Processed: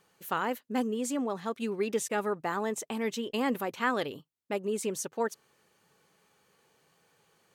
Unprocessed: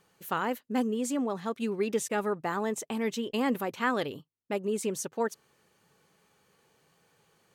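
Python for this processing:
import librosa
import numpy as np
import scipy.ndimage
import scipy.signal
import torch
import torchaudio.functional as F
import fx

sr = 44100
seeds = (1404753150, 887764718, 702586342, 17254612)

y = fx.low_shelf(x, sr, hz=200.0, db=-5.0)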